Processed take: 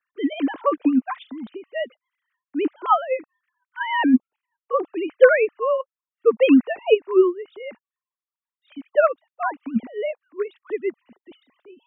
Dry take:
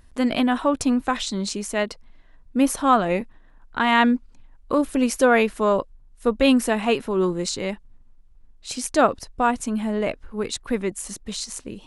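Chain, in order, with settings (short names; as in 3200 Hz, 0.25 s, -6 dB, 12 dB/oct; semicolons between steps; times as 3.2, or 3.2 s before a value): sine-wave speech; upward expander 1.5:1, over -38 dBFS; gain +3.5 dB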